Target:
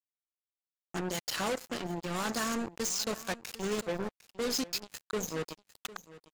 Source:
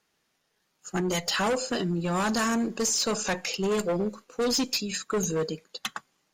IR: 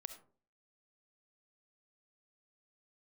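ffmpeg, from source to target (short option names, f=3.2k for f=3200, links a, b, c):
-af "acrusher=bits=3:mix=0:aa=0.5,aecho=1:1:753:0.133,volume=-6.5dB"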